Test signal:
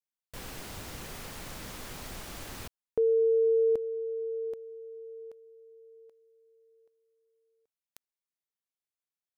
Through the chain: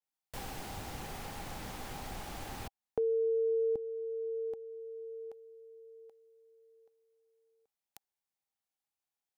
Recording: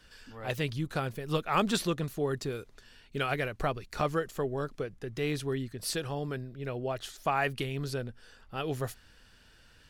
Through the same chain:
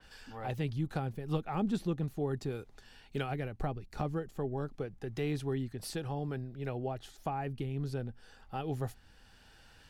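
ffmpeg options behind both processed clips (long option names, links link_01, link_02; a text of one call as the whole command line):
ffmpeg -i in.wav -filter_complex "[0:a]equalizer=frequency=800:width=5.7:gain=11.5,acrossover=split=370[link_01][link_02];[link_02]acompressor=threshold=-39dB:ratio=6:attack=35:release=811:knee=6:detection=rms[link_03];[link_01][link_03]amix=inputs=2:normalize=0,adynamicequalizer=threshold=0.00112:dfrequency=3800:dqfactor=0.7:tfrequency=3800:tqfactor=0.7:attack=5:release=100:ratio=0.375:range=1.5:mode=cutabove:tftype=highshelf" out.wav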